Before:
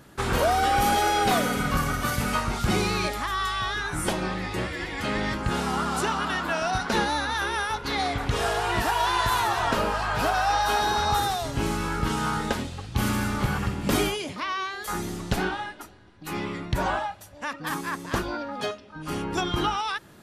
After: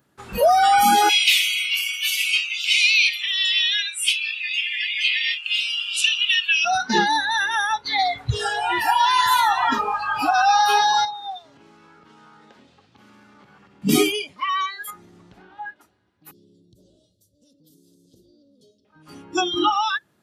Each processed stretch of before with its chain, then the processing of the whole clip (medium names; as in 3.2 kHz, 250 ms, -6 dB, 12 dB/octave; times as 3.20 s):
1.09–6.65 s: resonant high-pass 2.7 kHz, resonance Q 4 + hard clipper -14 dBFS
11.05–13.82 s: compression, threshold -31 dBFS + three-band isolator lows -14 dB, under 170 Hz, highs -17 dB, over 6.1 kHz
14.90–15.76 s: peaking EQ 13 kHz -14 dB 1.6 oct + compression 12:1, threshold -30 dBFS
16.31–18.85 s: inverse Chebyshev band-stop 790–2400 Hz + compression 2.5:1, threshold -42 dBFS
whole clip: spectral noise reduction 22 dB; high-pass 86 Hz 12 dB/octave; trim +8 dB